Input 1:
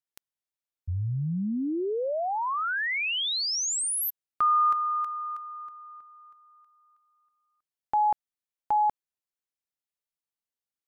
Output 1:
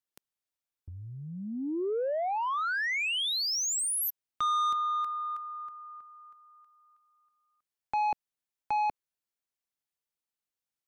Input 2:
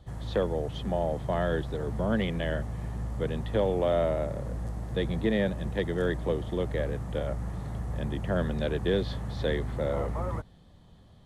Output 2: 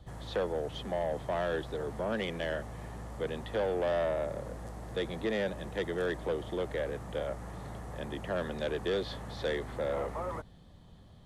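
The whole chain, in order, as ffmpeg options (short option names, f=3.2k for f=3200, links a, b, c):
-filter_complex "[0:a]acrossover=split=300[a][b];[a]acompressor=threshold=-44dB:ratio=6:attack=11:release=35:knee=1[c];[b]asoftclip=type=tanh:threshold=-25.5dB[d];[c][d]amix=inputs=2:normalize=0"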